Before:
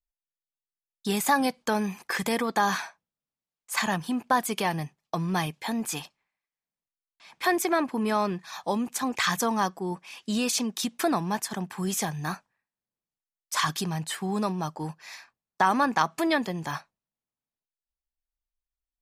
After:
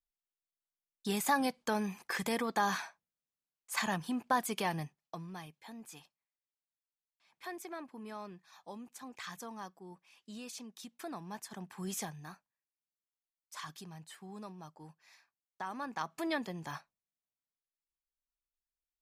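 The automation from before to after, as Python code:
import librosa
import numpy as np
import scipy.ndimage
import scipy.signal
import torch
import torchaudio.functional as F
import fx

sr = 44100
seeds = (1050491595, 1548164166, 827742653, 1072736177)

y = fx.gain(x, sr, db=fx.line((4.82, -7.0), (5.38, -19.5), (10.94, -19.5), (11.97, -9.5), (12.34, -19.0), (15.7, -19.0), (16.29, -10.0)))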